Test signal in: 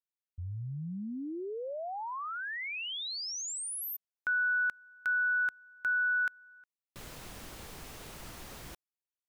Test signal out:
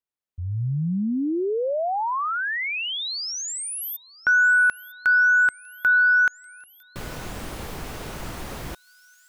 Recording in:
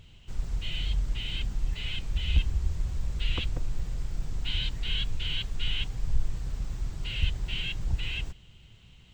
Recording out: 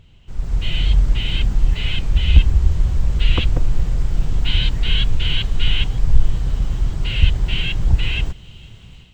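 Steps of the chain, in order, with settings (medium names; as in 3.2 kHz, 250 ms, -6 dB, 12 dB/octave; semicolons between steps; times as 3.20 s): treble shelf 2.4 kHz -7.5 dB; feedback echo behind a high-pass 954 ms, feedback 71%, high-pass 5 kHz, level -16 dB; level rider gain up to 10.5 dB; trim +3.5 dB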